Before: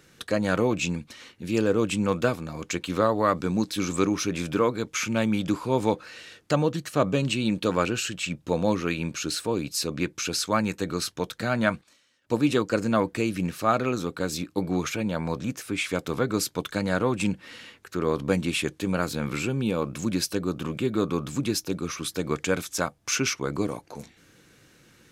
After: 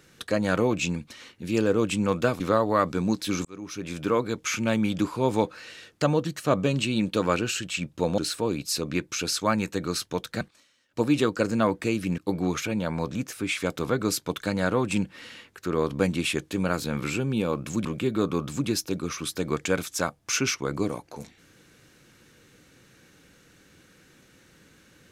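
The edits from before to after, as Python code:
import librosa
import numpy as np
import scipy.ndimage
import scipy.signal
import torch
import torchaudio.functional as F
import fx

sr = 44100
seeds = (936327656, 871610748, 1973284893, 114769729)

y = fx.edit(x, sr, fx.cut(start_s=2.4, length_s=0.49),
    fx.fade_in_span(start_s=3.94, length_s=0.78),
    fx.cut(start_s=8.67, length_s=0.57),
    fx.cut(start_s=11.47, length_s=0.27),
    fx.cut(start_s=13.51, length_s=0.96),
    fx.cut(start_s=20.14, length_s=0.5), tone=tone)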